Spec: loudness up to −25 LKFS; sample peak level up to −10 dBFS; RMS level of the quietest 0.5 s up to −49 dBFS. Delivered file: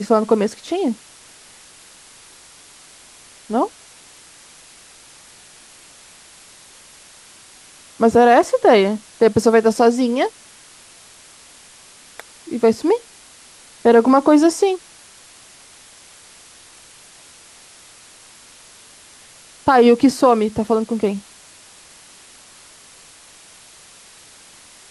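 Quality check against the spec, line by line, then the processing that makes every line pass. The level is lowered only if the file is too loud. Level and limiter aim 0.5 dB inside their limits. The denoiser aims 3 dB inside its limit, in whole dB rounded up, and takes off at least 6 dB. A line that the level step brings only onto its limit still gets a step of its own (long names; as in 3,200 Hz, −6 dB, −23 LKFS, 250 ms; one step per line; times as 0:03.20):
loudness −16.0 LKFS: out of spec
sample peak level −3.0 dBFS: out of spec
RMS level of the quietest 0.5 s −45 dBFS: out of spec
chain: level −9.5 dB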